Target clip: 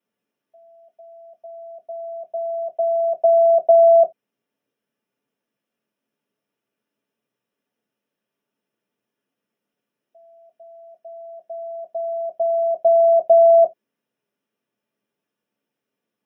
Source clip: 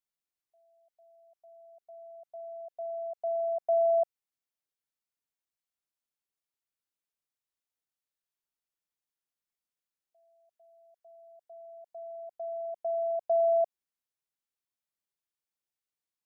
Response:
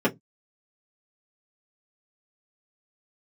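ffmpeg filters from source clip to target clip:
-filter_complex "[0:a]alimiter=level_in=1.06:limit=0.0631:level=0:latency=1,volume=0.944[s0];[1:a]atrim=start_sample=2205,atrim=end_sample=3969[s1];[s0][s1]afir=irnorm=-1:irlink=0,volume=1.12"

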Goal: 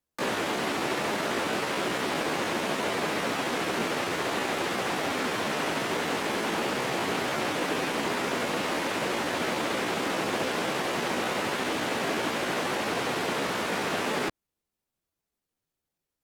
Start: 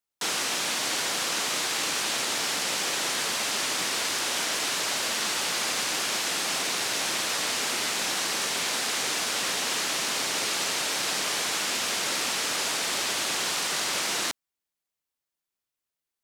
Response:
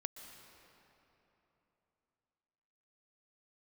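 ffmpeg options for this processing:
-filter_complex "[0:a]asetrate=53981,aresample=44100,atempo=0.816958,tiltshelf=f=660:g=7,acrossover=split=3100[s0][s1];[s1]acompressor=threshold=0.00316:ratio=4:attack=1:release=60[s2];[s0][s2]amix=inputs=2:normalize=0,volume=2.24"

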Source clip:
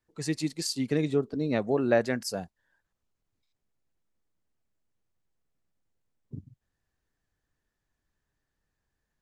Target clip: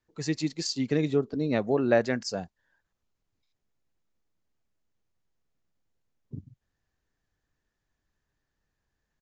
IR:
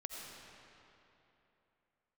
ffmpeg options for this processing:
-af "aresample=16000,aresample=44100,volume=1.12"

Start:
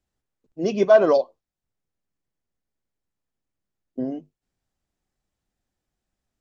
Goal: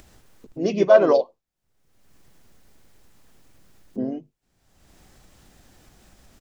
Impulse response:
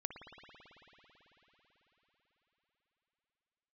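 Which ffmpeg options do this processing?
-filter_complex "[0:a]asplit=2[s0][s1];[s1]asetrate=37084,aresample=44100,atempo=1.18921,volume=0.355[s2];[s0][s2]amix=inputs=2:normalize=0,acompressor=mode=upward:threshold=0.0316:ratio=2.5"

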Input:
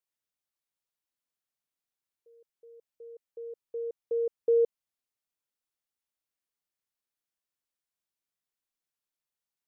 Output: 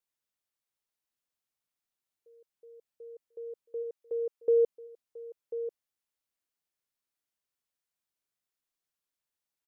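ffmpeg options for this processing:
-filter_complex "[0:a]asplit=3[s0][s1][s2];[s0]afade=t=out:st=3.82:d=0.02[s3];[s1]highpass=f=470:p=1,afade=t=in:st=3.82:d=0.02,afade=t=out:st=4.39:d=0.02[s4];[s2]afade=t=in:st=4.39:d=0.02[s5];[s3][s4][s5]amix=inputs=3:normalize=0,aecho=1:1:1042:0.251"

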